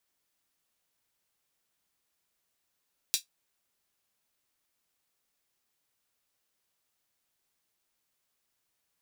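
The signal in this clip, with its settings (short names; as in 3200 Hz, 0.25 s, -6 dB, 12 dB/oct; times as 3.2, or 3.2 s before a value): closed hi-hat, high-pass 3800 Hz, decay 0.13 s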